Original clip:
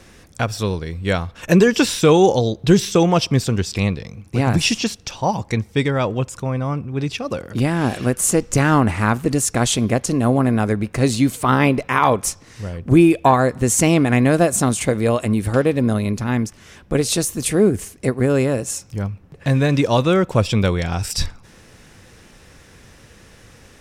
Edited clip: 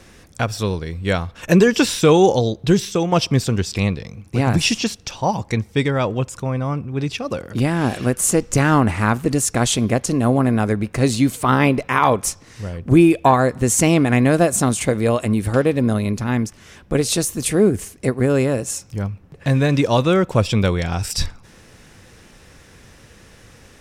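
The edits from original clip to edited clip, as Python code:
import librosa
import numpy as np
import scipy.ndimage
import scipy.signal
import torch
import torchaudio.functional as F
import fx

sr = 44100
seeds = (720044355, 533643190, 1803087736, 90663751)

y = fx.edit(x, sr, fx.fade_out_to(start_s=2.44, length_s=0.68, floor_db=-6.5), tone=tone)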